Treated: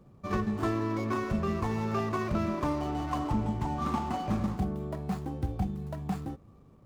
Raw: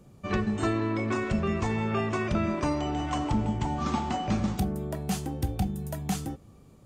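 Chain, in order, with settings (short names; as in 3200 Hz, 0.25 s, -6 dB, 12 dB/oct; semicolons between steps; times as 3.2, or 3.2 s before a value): median filter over 15 samples; bell 1100 Hz +5.5 dB 0.31 oct; gain -2.5 dB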